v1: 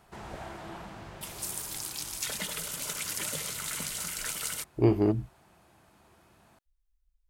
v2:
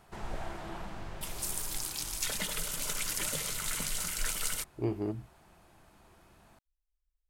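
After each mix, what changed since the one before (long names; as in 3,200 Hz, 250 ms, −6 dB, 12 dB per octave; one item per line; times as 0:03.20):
speech −9.5 dB
background: remove high-pass filter 68 Hz 12 dB per octave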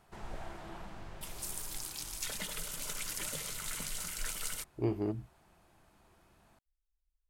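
background −5.0 dB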